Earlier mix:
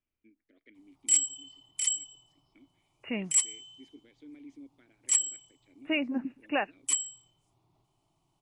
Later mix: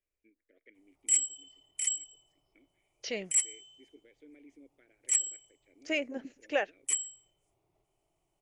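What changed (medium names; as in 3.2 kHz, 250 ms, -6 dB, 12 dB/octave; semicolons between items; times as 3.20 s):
second voice: remove brick-wall FIR low-pass 2.9 kHz; master: add graphic EQ 125/250/500/1000/2000/4000 Hz -9/-10/+9/-11/+5/-11 dB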